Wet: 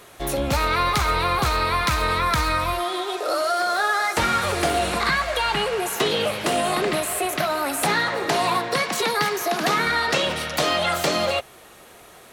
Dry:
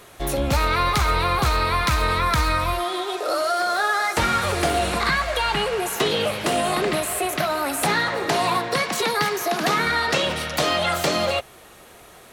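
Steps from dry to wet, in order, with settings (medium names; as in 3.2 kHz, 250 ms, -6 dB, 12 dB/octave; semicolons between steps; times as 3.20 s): bass shelf 110 Hz -5 dB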